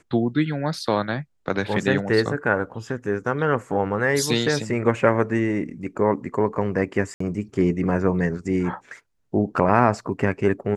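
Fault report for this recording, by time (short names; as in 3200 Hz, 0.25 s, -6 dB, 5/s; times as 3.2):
7.14–7.2 gap 64 ms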